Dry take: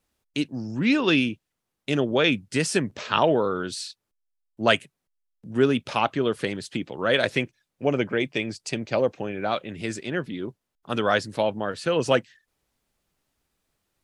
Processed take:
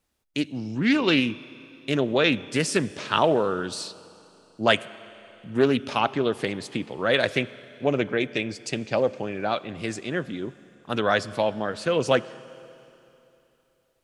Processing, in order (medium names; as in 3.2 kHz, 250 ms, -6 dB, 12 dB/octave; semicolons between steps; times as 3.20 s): Schroeder reverb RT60 3 s, combs from 29 ms, DRR 17.5 dB; loudspeaker Doppler distortion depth 0.15 ms